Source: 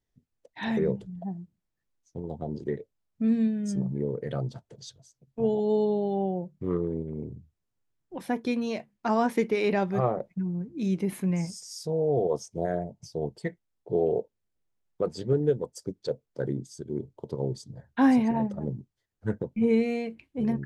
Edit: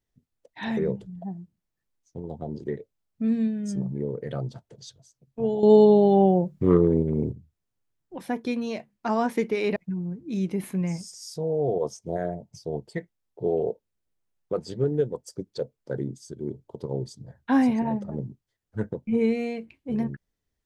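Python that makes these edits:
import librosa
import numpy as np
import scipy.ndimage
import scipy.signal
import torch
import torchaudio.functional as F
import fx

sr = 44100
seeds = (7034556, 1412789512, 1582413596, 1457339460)

y = fx.edit(x, sr, fx.clip_gain(start_s=5.63, length_s=1.69, db=10.0),
    fx.cut(start_s=9.76, length_s=0.49), tone=tone)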